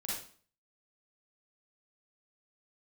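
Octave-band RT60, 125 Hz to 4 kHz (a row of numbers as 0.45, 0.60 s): 0.50, 0.50, 0.45, 0.45, 0.45, 0.40 s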